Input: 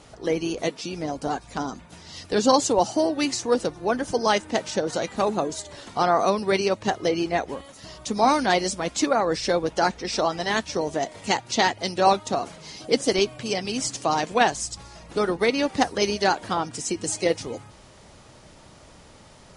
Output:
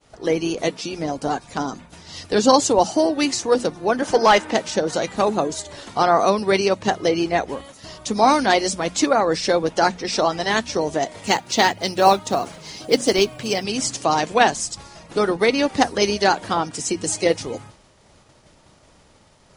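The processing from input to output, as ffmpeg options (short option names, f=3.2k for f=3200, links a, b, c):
-filter_complex "[0:a]asettb=1/sr,asplit=3[a][b][c];[a]atrim=end=4.024[d];[b]atrim=start=4.02:end=4.54,asetpts=PTS-STARTPTS,afade=t=in:d=0.004:c=qsin,afade=t=out:st=0.516:d=0.004:c=qsin,asplit=2[e][f];[f]highpass=f=720:p=1,volume=15dB,asoftclip=type=tanh:threshold=-7dB[g];[e][g]amix=inputs=2:normalize=0,lowpass=f=2.3k:p=1,volume=-6dB[h];[c]atrim=start=4.536[i];[d][h]acrossfade=d=0.004:c1=hsin:c2=qsin[j];[j][i]acrossfade=d=0.004:c1=qsin:c2=hsin,asettb=1/sr,asplit=3[k][l][m];[k]atrim=end=11.234[n];[l]atrim=start=11.23:end=13.64,asetpts=PTS-STARTPTS,afade=t=in:d=0.004:c=qsin,afade=t=out:st=2.406:d=0.004:c=qsin,acrusher=bits=7:mode=log:mix=0:aa=0.000001[o];[m]atrim=start=13.636[p];[n][o]acrossfade=d=0.004:c1=hsin:c2=qsin[q];[q][p]acrossfade=d=0.004:c1=qsin:c2=hsin,agate=range=-33dB:threshold=-42dB:ratio=3:detection=peak,bandreject=f=60:t=h:w=6,bandreject=f=120:t=h:w=6,bandreject=f=180:t=h:w=6,bandreject=f=240:t=h:w=6,volume=4dB"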